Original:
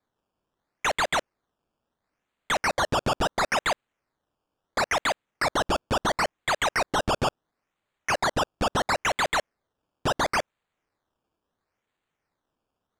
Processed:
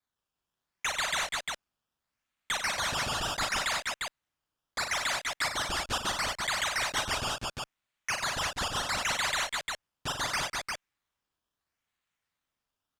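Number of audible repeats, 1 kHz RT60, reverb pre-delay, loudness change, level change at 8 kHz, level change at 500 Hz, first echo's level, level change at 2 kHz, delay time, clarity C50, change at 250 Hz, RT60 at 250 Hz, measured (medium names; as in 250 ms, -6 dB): 4, no reverb, no reverb, -4.5 dB, +1.5 dB, -11.5 dB, -6.5 dB, -3.0 dB, 40 ms, no reverb, -11.0 dB, no reverb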